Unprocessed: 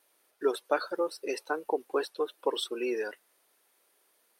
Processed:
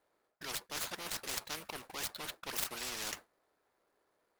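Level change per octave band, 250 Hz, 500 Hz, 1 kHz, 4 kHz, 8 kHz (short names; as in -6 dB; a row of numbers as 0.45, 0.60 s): -15.0, -20.5, -10.5, -0.5, +8.0 dB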